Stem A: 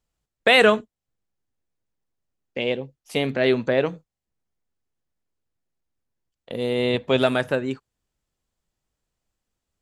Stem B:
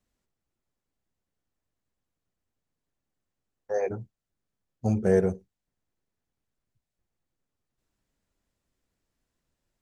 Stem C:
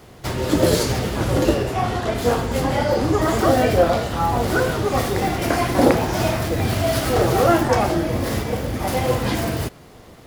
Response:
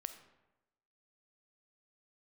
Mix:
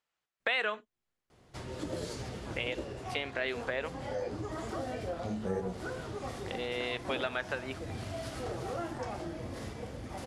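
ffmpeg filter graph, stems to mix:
-filter_complex "[0:a]acompressor=threshold=-23dB:ratio=1.5,bandpass=f=1.8k:t=q:w=0.74:csg=0,volume=2.5dB[a];[1:a]flanger=delay=16.5:depth=7.2:speed=1.7,adelay=400,volume=-2.5dB[b];[2:a]lowpass=f=10k:w=0.5412,lowpass=f=10k:w=1.3066,adelay=1300,volume=-17.5dB[c];[a][b][c]amix=inputs=3:normalize=0,acompressor=threshold=-36dB:ratio=2"

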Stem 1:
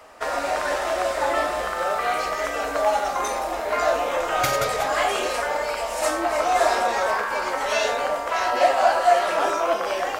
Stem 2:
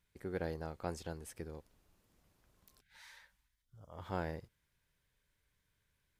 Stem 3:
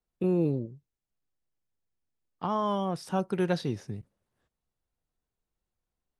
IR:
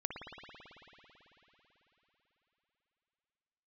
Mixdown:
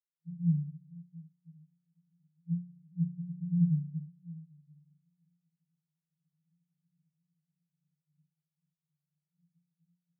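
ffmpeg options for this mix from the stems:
-filter_complex "[0:a]volume=-7dB[a];[1:a]volume=-3dB,asplit=2[b][c];[2:a]aphaser=in_gain=1:out_gain=1:delay=1.1:decay=0.61:speed=0.77:type=triangular,volume=-1dB[d];[c]apad=whole_len=449783[e];[a][e]sidechaincompress=threshold=-47dB:ratio=8:attack=50:release=895[f];[f][b][d]amix=inputs=3:normalize=0,afftdn=nr=21:nf=-39,dynaudnorm=f=380:g=3:m=6.5dB,asuperpass=centerf=160:order=20:qfactor=5.3"

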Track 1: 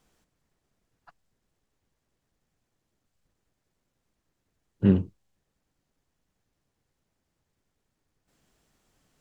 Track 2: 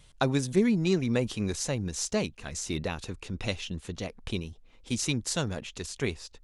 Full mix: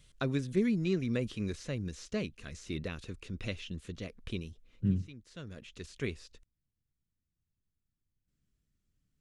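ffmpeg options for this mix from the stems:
-filter_complex "[0:a]asubboost=boost=5:cutoff=210,volume=-17.5dB,asplit=2[a][b];[1:a]acrossover=split=3700[c][d];[d]acompressor=threshold=-50dB:ratio=4:attack=1:release=60[e];[c][e]amix=inputs=2:normalize=0,volume=-4.5dB[f];[b]apad=whole_len=283708[g];[f][g]sidechaincompress=threshold=-43dB:ratio=12:attack=22:release=730[h];[a][h]amix=inputs=2:normalize=0,equalizer=f=830:w=2.4:g=-13.5"

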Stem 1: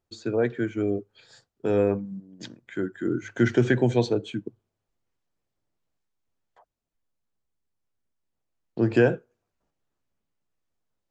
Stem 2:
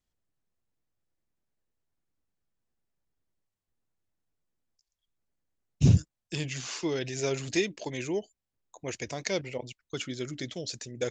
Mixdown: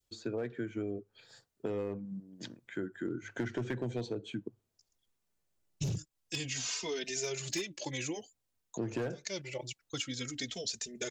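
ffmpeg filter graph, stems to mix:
-filter_complex "[0:a]aeval=exprs='clip(val(0),-1,0.178)':c=same,volume=-4.5dB,asplit=2[a][b];[1:a]highshelf=f=2.3k:g=10,asplit=2[c][d];[d]adelay=3,afreqshift=-0.53[e];[c][e]amix=inputs=2:normalize=1,volume=-0.5dB[f];[b]apad=whole_len=490017[g];[f][g]sidechaincompress=threshold=-36dB:ratio=6:attack=16:release=446[h];[a][h]amix=inputs=2:normalize=0,adynamicequalizer=threshold=0.0112:dfrequency=950:dqfactor=0.79:tfrequency=950:tqfactor=0.79:attack=5:release=100:ratio=0.375:range=2:mode=cutabove:tftype=bell,asoftclip=type=hard:threshold=-20.5dB,acompressor=threshold=-33dB:ratio=6"

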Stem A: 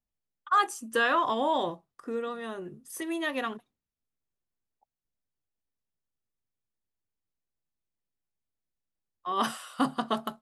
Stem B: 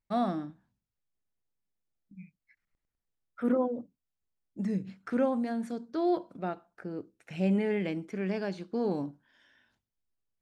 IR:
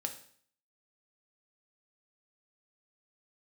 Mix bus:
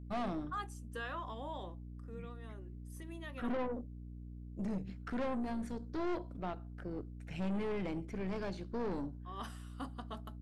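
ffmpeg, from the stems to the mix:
-filter_complex "[0:a]volume=-17.5dB[a];[1:a]aeval=exprs='val(0)+0.00708*(sin(2*PI*60*n/s)+sin(2*PI*2*60*n/s)/2+sin(2*PI*3*60*n/s)/3+sin(2*PI*4*60*n/s)/4+sin(2*PI*5*60*n/s)/5)':c=same,aeval=exprs='(tanh(39.8*val(0)+0.45)-tanh(0.45))/39.8':c=same,volume=-1.5dB[b];[a][b]amix=inputs=2:normalize=0"

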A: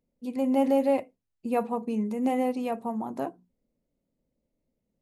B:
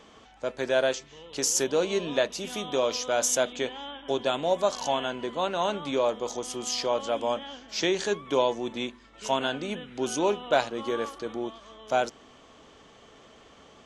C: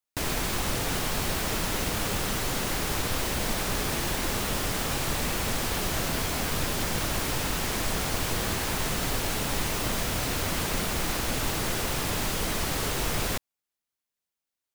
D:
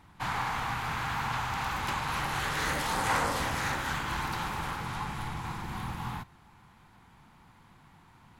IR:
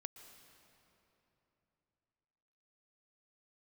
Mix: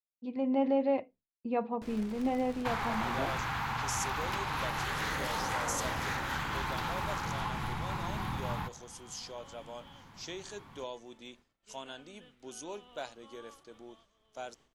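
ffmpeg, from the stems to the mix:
-filter_complex "[0:a]lowpass=f=4.2k:w=0.5412,lowpass=f=4.2k:w=1.3066,volume=-5dB,asplit=2[a][b];[1:a]highshelf=f=5.3k:g=10.5,adelay=2450,volume=-18dB[c];[2:a]aemphasis=mode=reproduction:type=50fm,aeval=exprs='(mod(8.41*val(0)+1,2)-1)/8.41':c=same,aeval=exprs='(tanh(14.1*val(0)+0.55)-tanh(0.55))/14.1':c=same,adelay=1650,volume=-17dB,asplit=2[d][e];[e]volume=-18.5dB[f];[3:a]equalizer=f=9k:t=o:w=0.68:g=-6,acompressor=threshold=-34dB:ratio=5,adelay=2450,volume=2.5dB[g];[b]apad=whole_len=722866[h];[d][h]sidechaingate=range=-33dB:threshold=-51dB:ratio=16:detection=peak[i];[4:a]atrim=start_sample=2205[j];[f][j]afir=irnorm=-1:irlink=0[k];[a][c][i][g][k]amix=inputs=5:normalize=0,agate=range=-33dB:threshold=-56dB:ratio=3:detection=peak"

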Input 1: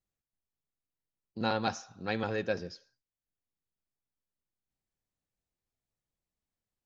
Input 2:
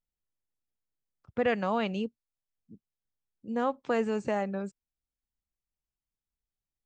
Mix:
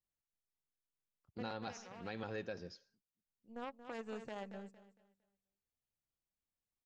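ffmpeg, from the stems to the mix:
-filter_complex "[0:a]volume=-7.5dB,asplit=2[a][b];[1:a]aeval=exprs='0.15*(cos(1*acos(clip(val(0)/0.15,-1,1)))-cos(1*PI/2))+0.0376*(cos(3*acos(clip(val(0)/0.15,-1,1)))-cos(3*PI/2))+0.00376*(cos(6*acos(clip(val(0)/0.15,-1,1)))-cos(6*PI/2))':c=same,volume=-4.5dB,asplit=2[c][d];[d]volume=-16.5dB[e];[b]apad=whole_len=302272[f];[c][f]sidechaincompress=threshold=-53dB:ratio=8:attack=20:release=1170[g];[e]aecho=0:1:229|458|687|916:1|0.3|0.09|0.027[h];[a][g][h]amix=inputs=3:normalize=0,alimiter=level_in=8dB:limit=-24dB:level=0:latency=1:release=145,volume=-8dB"

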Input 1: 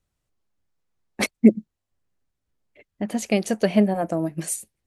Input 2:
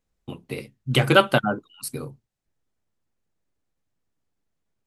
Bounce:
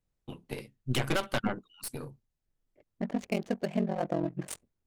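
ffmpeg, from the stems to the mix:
-filter_complex "[0:a]adynamicsmooth=sensitivity=6:basefreq=590,aeval=exprs='val(0)*sin(2*PI*22*n/s)':c=same,volume=-3dB[a];[1:a]aeval=exprs='0.75*(cos(1*acos(clip(val(0)/0.75,-1,1)))-cos(1*PI/2))+0.133*(cos(8*acos(clip(val(0)/0.75,-1,1)))-cos(8*PI/2))':c=same,volume=-7dB,asplit=2[b][c];[c]apad=whole_len=214671[d];[a][d]sidechaincompress=threshold=-35dB:ratio=8:attack=5.5:release=144[e];[e][b]amix=inputs=2:normalize=0,alimiter=limit=-17.5dB:level=0:latency=1:release=263"

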